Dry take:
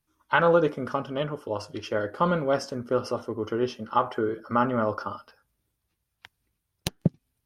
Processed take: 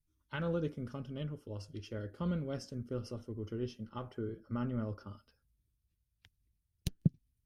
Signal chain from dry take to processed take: passive tone stack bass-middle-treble 10-0-1; 3.89–5.07 mismatched tape noise reduction decoder only; gain +9 dB

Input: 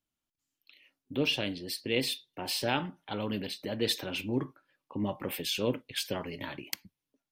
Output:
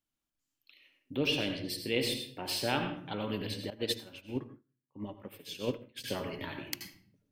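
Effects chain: reverb RT60 0.55 s, pre-delay 75 ms, DRR 5 dB; 3.7–6.04 upward expander 2.5:1, over -46 dBFS; gain -2 dB

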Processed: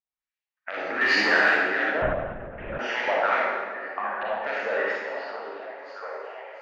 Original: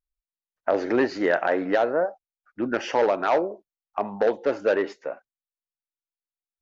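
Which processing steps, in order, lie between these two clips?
band shelf 630 Hz -8.5 dB 2.5 oct; 1.01–1.49 sample leveller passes 3; limiter -18.5 dBFS, peak gain reduction 5 dB; LFO band-pass saw up 2.6 Hz 720–2700 Hz; 3.99–4.41 fixed phaser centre 1600 Hz, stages 6; delay with a stepping band-pass 0.682 s, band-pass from 320 Hz, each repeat 0.7 oct, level -6 dB; reverb RT60 1.5 s, pre-delay 33 ms, DRR -5.5 dB; 2.02–2.79 LPC vocoder at 8 kHz whisper; gain +8.5 dB

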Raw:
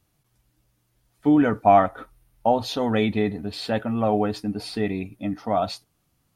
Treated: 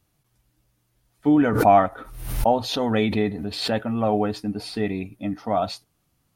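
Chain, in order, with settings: 1.44–3.85 backwards sustainer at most 64 dB/s

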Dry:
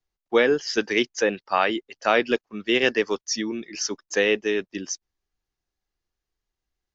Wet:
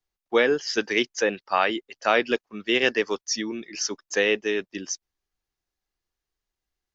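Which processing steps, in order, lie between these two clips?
low shelf 410 Hz -3.5 dB

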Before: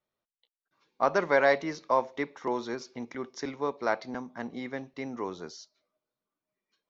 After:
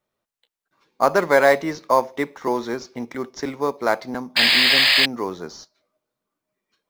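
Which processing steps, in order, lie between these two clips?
painted sound noise, 4.36–5.06, 1600–5100 Hz -22 dBFS; in parallel at -11 dB: sample-rate reducer 5600 Hz, jitter 0%; on the sum: gain +6 dB

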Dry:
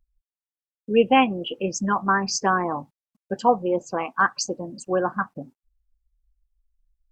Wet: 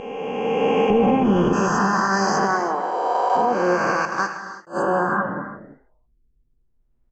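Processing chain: spectral swells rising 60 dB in 2.90 s; LPF 1800 Hz 6 dB/oct; 0.9–1.53 tilt -4.5 dB/oct; 2.47–3.35 HPF 250 Hz -> 530 Hz 24 dB/oct; 4.05–4.67 gate -15 dBFS, range -37 dB; limiter -11 dBFS, peak gain reduction 11.5 dB; frequency-shifting echo 81 ms, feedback 54%, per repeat +110 Hz, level -20 dB; non-linear reverb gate 0.37 s flat, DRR 6.5 dB; attack slew limiter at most 260 dB/s

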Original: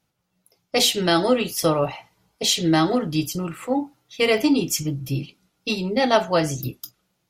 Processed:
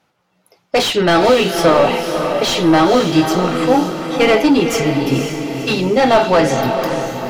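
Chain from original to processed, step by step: overdrive pedal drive 22 dB, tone 1300 Hz, clips at -4.5 dBFS; diffused feedback echo 0.513 s, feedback 51%, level -6 dB; gain +2.5 dB

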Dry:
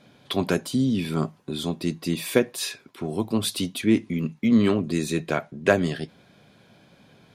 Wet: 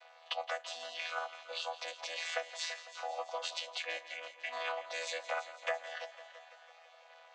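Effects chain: chord vocoder bare fifth, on E3; Chebyshev high-pass 580 Hz, order 6; compressor 4:1, threshold -46 dBFS, peak gain reduction 17 dB; on a send: multi-head echo 0.167 s, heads first and second, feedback 56%, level -16 dB; on the sum: gain +10.5 dB

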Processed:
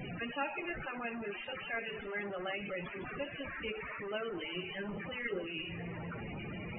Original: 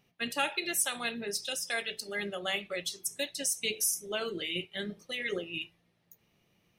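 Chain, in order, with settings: delta modulation 16 kbps, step -30.5 dBFS; loudest bins only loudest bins 32; thinning echo 0.232 s, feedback 73%, high-pass 160 Hz, level -20.5 dB; gain -3.5 dB

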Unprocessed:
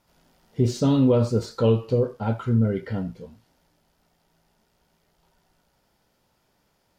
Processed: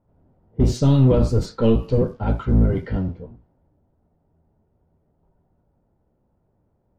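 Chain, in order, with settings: octaver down 1 oct, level +2 dB; in parallel at -12 dB: soft clip -24.5 dBFS, distortion -5 dB; on the sum: low-pass opened by the level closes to 610 Hz, open at -15.5 dBFS

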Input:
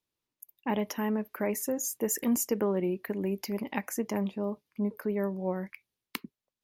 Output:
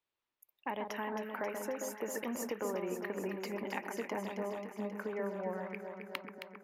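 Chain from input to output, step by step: three-band isolator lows -12 dB, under 480 Hz, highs -15 dB, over 3700 Hz; compressor 4:1, threshold -37 dBFS, peak gain reduction 8 dB; on a send: echo with dull and thin repeats by turns 0.134 s, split 1500 Hz, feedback 83%, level -5 dB; on the sum: gain +1.5 dB

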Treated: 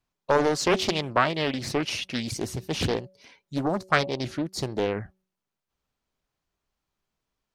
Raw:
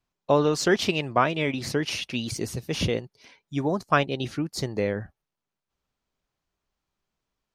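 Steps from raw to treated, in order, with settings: de-hum 187.8 Hz, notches 3; Doppler distortion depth 0.84 ms

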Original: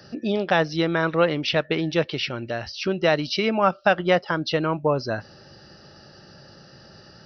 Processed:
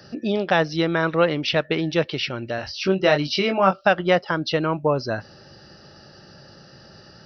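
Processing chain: 2.56–3.81 doubler 21 ms -5 dB; gain +1 dB

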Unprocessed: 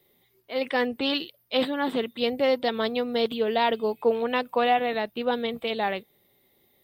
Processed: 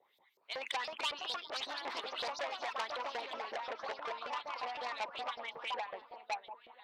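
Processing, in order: echo with dull and thin repeats by turns 0.497 s, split 1100 Hz, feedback 63%, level -12 dB; harmonic-percussive split harmonic -15 dB; wavefolder -22 dBFS; bell 930 Hz +9.5 dB 0.68 oct; compressor 10:1, threshold -32 dBFS, peak gain reduction 12 dB; LFO band-pass saw up 5.4 Hz 550–5500 Hz; echoes that change speed 0.409 s, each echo +3 st, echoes 2; high shelf 2500 Hz +2 dB, from 0.92 s -5.5 dB, from 3.33 s -11.5 dB; core saturation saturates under 3600 Hz; gain +7 dB

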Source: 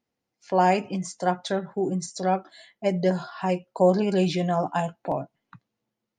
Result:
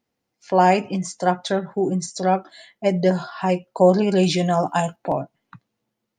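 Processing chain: 4.23–4.96 high shelf 5700 Hz +12 dB; gain +4.5 dB

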